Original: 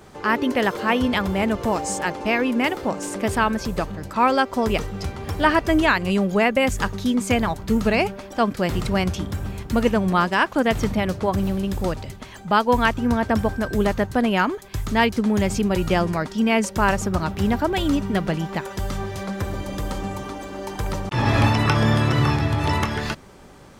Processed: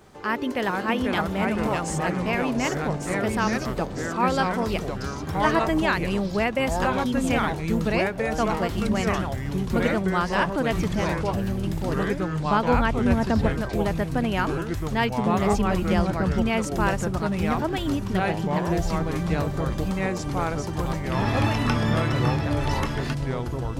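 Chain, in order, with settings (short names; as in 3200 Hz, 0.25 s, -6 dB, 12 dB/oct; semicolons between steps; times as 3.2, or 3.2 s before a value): 12.22–13.52 tilt -2 dB/oct; echoes that change speed 0.386 s, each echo -3 st, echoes 3; requantised 12-bit, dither none; gain -5.5 dB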